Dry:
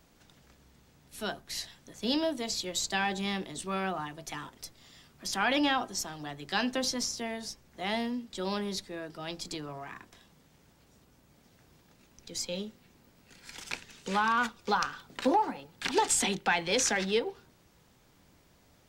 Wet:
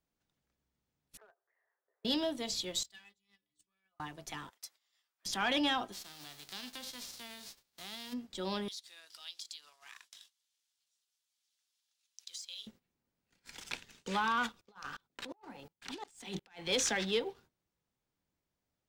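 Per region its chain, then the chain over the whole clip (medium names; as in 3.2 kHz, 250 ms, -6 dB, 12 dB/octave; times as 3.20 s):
1.17–2.05 s: Chebyshev band-pass 400–1900 Hz, order 4 + compression, threshold -52 dBFS
2.83–4.00 s: amplifier tone stack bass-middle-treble 5-5-5 + inharmonic resonator 62 Hz, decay 0.43 s, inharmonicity 0.03
4.50–5.26 s: high-pass 920 Hz + treble shelf 9 kHz +3 dB
5.92–8.12 s: formants flattened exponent 0.3 + peaking EQ 4.2 kHz +7.5 dB 0.98 oct + compression 2.5:1, threshold -45 dBFS
8.68–12.67 s: high-order bell 5.9 kHz +12 dB 2.3 oct + compression 10:1, threshold -38 dBFS + high-pass 1.5 kHz
14.61–16.69 s: compressor with a negative ratio -34 dBFS + sawtooth tremolo in dB swelling 2.8 Hz, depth 25 dB
whole clip: gate -53 dBFS, range -15 dB; dynamic bell 3.4 kHz, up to +6 dB, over -50 dBFS, Q 3.9; waveshaping leveller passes 1; trim -8 dB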